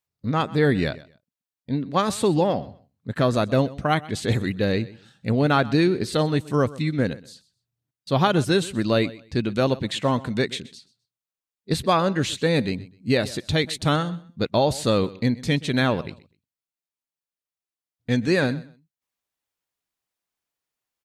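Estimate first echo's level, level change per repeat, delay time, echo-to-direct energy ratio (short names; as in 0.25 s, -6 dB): -19.5 dB, -13.5 dB, 0.127 s, -19.5 dB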